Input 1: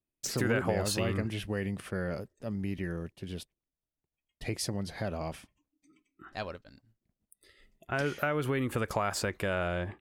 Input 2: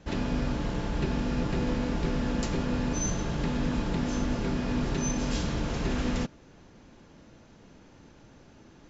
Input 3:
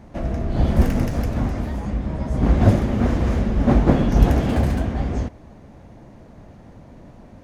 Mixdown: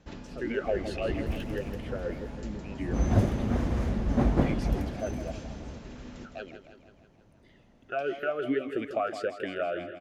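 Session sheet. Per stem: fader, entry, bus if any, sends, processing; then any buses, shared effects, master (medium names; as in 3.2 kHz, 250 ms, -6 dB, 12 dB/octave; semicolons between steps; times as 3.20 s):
+2.0 dB, 0.00 s, no send, echo send -11 dB, peaking EQ 990 Hz -13.5 dB 0.32 oct; level rider gain up to 8 dB; talking filter a-i 3 Hz
-5.5 dB, 0.00 s, no send, echo send -18.5 dB, auto duck -11 dB, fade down 0.25 s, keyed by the first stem
2.79 s -16.5 dB -> 3.07 s -8.5 dB -> 4.43 s -8.5 dB -> 4.95 s -18 dB, 0.50 s, no send, no echo send, treble shelf 12 kHz +3.5 dB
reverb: none
echo: feedback delay 162 ms, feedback 59%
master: none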